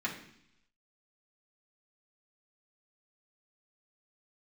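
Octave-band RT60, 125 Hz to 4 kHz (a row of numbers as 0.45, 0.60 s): 0.90, 0.85, 0.70, 0.70, 0.85, 0.95 s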